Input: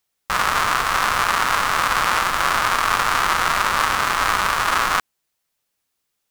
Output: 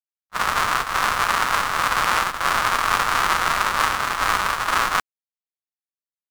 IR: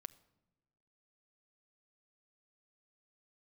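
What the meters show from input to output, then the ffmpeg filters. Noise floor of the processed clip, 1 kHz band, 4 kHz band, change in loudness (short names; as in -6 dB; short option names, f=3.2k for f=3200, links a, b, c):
under -85 dBFS, -1.5 dB, -2.0 dB, -1.5 dB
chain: -af "agate=range=-56dB:threshold=-18dB:ratio=16:detection=peak"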